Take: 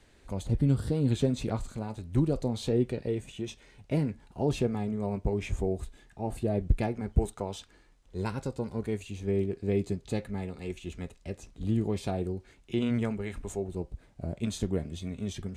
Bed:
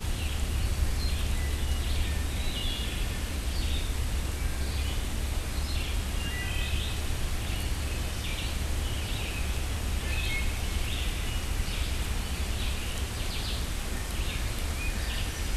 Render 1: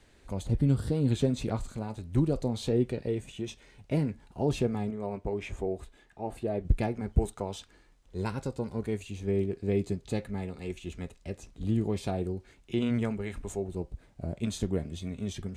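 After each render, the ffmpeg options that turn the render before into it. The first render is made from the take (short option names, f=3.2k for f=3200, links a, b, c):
-filter_complex "[0:a]asettb=1/sr,asplit=3[a][b][c];[a]atrim=end=4.904[d];[b]atrim=start=4.9:end=6.65,asetpts=PTS-STARTPTS,afade=t=in:d=0.004:c=qsin,afade=t=out:st=1.746:d=0.004:c=qsin,bass=f=250:g=-8,treble=f=4k:g=-6[e];[c]atrim=start=6.646[f];[d][e]acrossfade=d=0.004:c1=hsin:c2=qsin[g];[g][f]acrossfade=d=0.004:c1=qsin:c2=hsin"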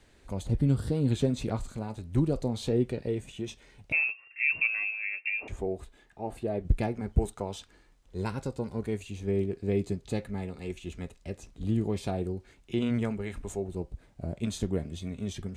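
-filter_complex "[0:a]asettb=1/sr,asplit=3[a][b][c];[a]atrim=end=3.924[d];[b]atrim=start=3.92:end=5.48,asetpts=PTS-STARTPTS,afade=t=in:d=0.004:c=qsin,afade=t=out:st=1.556:d=0.004:c=qsin,lowpass=f=2.4k:t=q:w=0.5098,lowpass=f=2.4k:t=q:w=0.6013,lowpass=f=2.4k:t=q:w=0.9,lowpass=f=2.4k:t=q:w=2.563,afreqshift=-2800[e];[c]atrim=start=5.476[f];[d][e]acrossfade=d=0.004:c1=hsin:c2=qsin[g];[g][f]acrossfade=d=0.004:c1=qsin:c2=hsin"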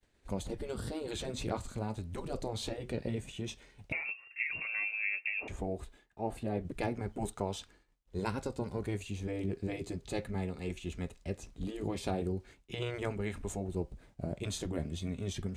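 -af "agate=range=-33dB:threshold=-51dB:ratio=3:detection=peak,afftfilt=real='re*lt(hypot(re,im),0.2)':imag='im*lt(hypot(re,im),0.2)':win_size=1024:overlap=0.75"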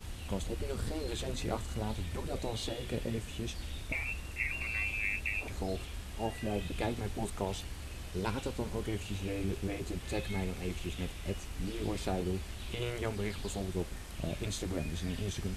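-filter_complex "[1:a]volume=-12dB[a];[0:a][a]amix=inputs=2:normalize=0"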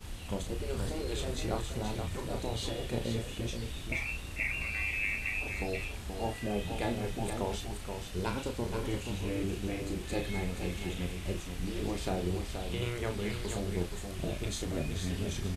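-filter_complex "[0:a]asplit=2[a][b];[b]adelay=34,volume=-6.5dB[c];[a][c]amix=inputs=2:normalize=0,aecho=1:1:477:0.473"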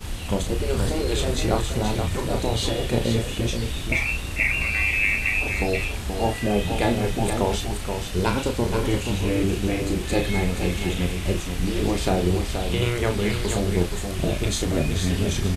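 -af "volume=11.5dB"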